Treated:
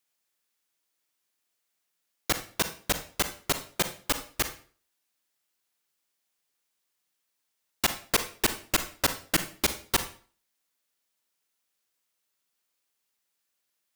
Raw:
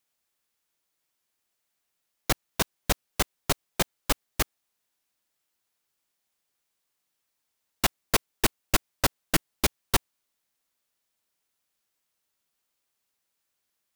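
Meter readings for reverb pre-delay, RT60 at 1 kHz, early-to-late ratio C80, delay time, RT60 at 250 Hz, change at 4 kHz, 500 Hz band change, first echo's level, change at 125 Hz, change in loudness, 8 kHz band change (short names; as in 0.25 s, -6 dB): 35 ms, 0.45 s, 16.0 dB, none, 0.50 s, +0.5 dB, -2.0 dB, none, -5.5 dB, -0.5 dB, +0.5 dB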